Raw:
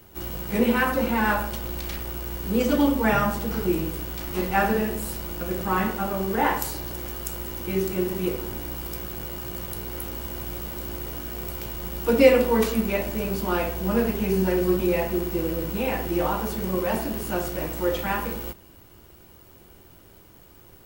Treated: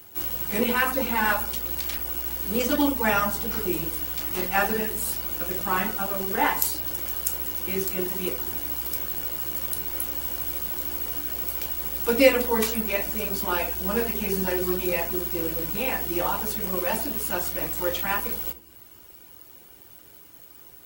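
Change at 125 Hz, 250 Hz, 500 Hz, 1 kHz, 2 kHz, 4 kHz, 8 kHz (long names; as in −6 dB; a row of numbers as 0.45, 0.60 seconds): −6.5, −5.0, −3.5, −1.0, +1.0, +2.5, +5.5 decibels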